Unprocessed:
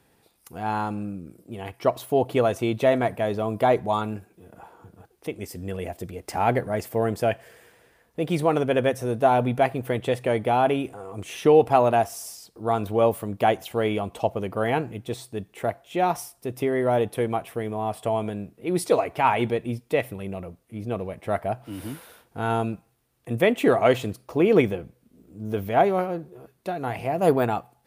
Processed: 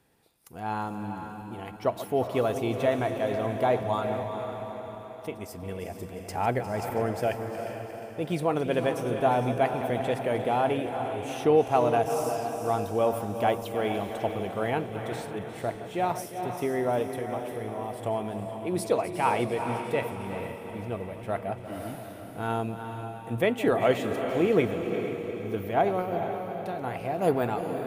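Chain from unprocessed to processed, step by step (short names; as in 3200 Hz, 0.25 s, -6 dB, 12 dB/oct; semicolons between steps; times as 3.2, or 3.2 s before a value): regenerating reverse delay 0.177 s, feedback 76%, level -12.5 dB; 17.02–18.06 compressor, threshold -26 dBFS, peak gain reduction 7 dB; diffused feedback echo 0.454 s, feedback 47%, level -8 dB; gain -5 dB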